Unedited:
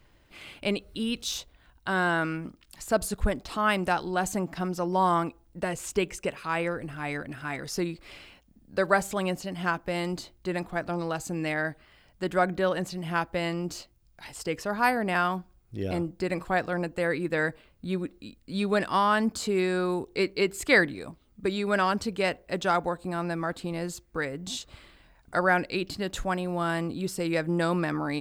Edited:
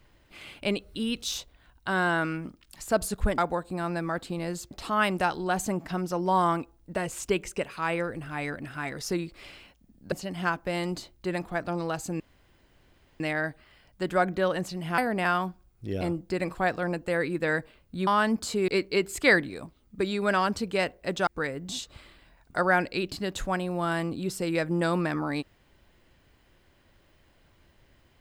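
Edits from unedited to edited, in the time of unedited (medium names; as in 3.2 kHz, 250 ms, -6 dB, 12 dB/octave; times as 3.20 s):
8.79–9.33 s: delete
11.41 s: insert room tone 1.00 s
13.19–14.88 s: delete
17.97–19.00 s: delete
19.61–20.13 s: delete
22.72–24.05 s: move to 3.38 s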